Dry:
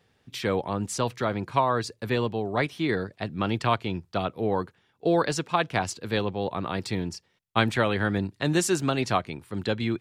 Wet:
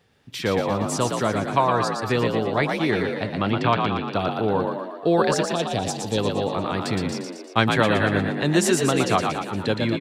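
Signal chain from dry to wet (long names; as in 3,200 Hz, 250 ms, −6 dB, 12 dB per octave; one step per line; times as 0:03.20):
0:03.51–0:04.05: low-pass filter 4,600 Hz 12 dB per octave
0:05.51–0:06.18: flat-topped bell 1,400 Hz −15 dB
echo with shifted repeats 117 ms, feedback 58%, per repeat +49 Hz, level −4.5 dB
level +3 dB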